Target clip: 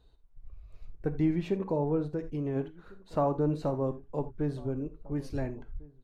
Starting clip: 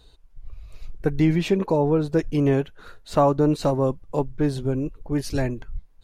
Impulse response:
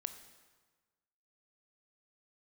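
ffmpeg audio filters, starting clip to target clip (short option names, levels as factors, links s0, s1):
-filter_complex "[0:a]highshelf=f=2300:g=-12,asplit=2[s0][s1];[s1]adelay=1399,volume=0.0708,highshelf=f=4000:g=-31.5[s2];[s0][s2]amix=inputs=2:normalize=0[s3];[1:a]atrim=start_sample=2205,atrim=end_sample=4410,asetrate=48510,aresample=44100[s4];[s3][s4]afir=irnorm=-1:irlink=0,asplit=3[s5][s6][s7];[s5]afade=t=out:st=2.07:d=0.02[s8];[s6]acompressor=threshold=0.0398:ratio=2,afade=t=in:st=2.07:d=0.02,afade=t=out:st=2.55:d=0.02[s9];[s7]afade=t=in:st=2.55:d=0.02[s10];[s8][s9][s10]amix=inputs=3:normalize=0,volume=0.562"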